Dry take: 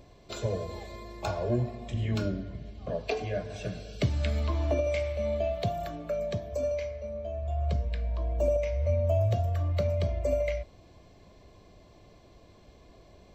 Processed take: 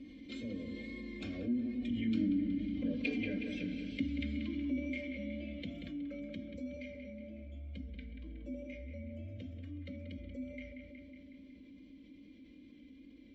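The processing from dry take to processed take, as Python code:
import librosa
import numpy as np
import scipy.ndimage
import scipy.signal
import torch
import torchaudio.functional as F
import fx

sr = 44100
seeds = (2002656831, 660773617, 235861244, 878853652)

p1 = fx.doppler_pass(x, sr, speed_mps=7, closest_m=3.7, pass_at_s=2.69)
p2 = fx.low_shelf(p1, sr, hz=190.0, db=11.5)
p3 = p2 + 0.92 * np.pad(p2, (int(3.8 * sr / 1000.0), 0))[:len(p2)]
p4 = fx.wow_flutter(p3, sr, seeds[0], rate_hz=2.1, depth_cents=27.0)
p5 = fx.vowel_filter(p4, sr, vowel='i')
p6 = p5 + fx.echo_wet_lowpass(p5, sr, ms=184, feedback_pct=53, hz=3600.0, wet_db=-9.5, dry=0)
p7 = fx.env_flatten(p6, sr, amount_pct=50)
y = F.gain(torch.from_numpy(p7), 4.0).numpy()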